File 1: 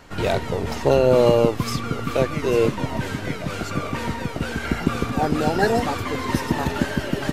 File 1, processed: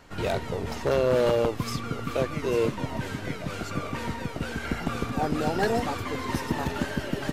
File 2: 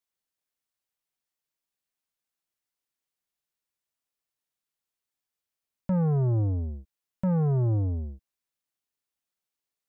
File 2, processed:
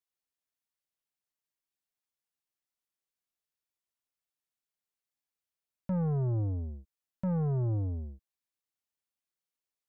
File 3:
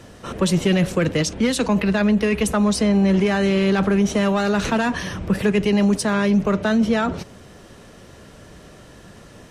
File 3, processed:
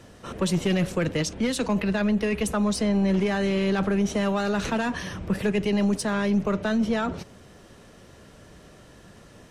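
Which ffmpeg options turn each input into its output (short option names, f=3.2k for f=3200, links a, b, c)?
-af "aeval=exprs='0.891*(cos(1*acos(clip(val(0)/0.891,-1,1)))-cos(1*PI/2))+0.0631*(cos(4*acos(clip(val(0)/0.891,-1,1)))-cos(4*PI/2))':c=same,aeval=exprs='0.316*(abs(mod(val(0)/0.316+3,4)-2)-1)':c=same,volume=-5.5dB"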